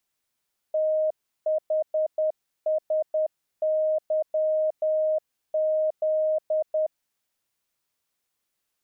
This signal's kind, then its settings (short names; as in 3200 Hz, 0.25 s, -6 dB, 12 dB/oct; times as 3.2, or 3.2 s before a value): Morse "THSYZ" 10 wpm 623 Hz -20.5 dBFS